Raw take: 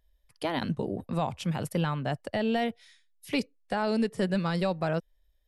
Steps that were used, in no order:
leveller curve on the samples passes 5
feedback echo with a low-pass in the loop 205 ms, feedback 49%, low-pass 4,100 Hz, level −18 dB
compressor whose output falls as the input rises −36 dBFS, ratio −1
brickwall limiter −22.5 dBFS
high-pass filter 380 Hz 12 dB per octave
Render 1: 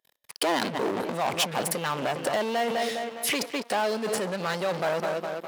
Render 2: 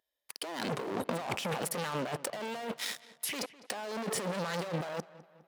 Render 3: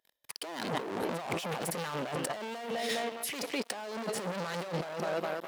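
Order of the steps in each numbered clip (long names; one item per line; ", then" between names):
feedback echo with a low-pass in the loop, then brickwall limiter, then compressor whose output falls as the input rises, then leveller curve on the samples, then high-pass filter
leveller curve on the samples, then brickwall limiter, then high-pass filter, then compressor whose output falls as the input rises, then feedback echo with a low-pass in the loop
brickwall limiter, then feedback echo with a low-pass in the loop, then leveller curve on the samples, then high-pass filter, then compressor whose output falls as the input rises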